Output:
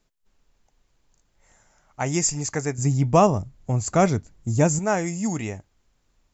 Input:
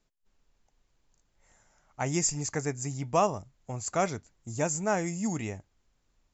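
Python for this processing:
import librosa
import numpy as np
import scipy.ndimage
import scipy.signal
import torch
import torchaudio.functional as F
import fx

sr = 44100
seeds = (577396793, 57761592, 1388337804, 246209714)

y = fx.low_shelf(x, sr, hz=380.0, db=11.0, at=(2.78, 4.79))
y = y * librosa.db_to_amplitude(5.0)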